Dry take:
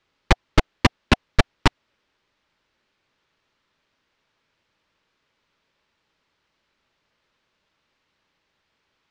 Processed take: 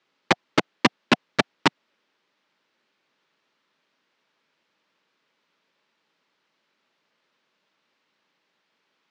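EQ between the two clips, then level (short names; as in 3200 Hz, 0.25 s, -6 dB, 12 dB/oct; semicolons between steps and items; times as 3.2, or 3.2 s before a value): HPF 170 Hz 24 dB/oct; LPF 8000 Hz 12 dB/oct; 0.0 dB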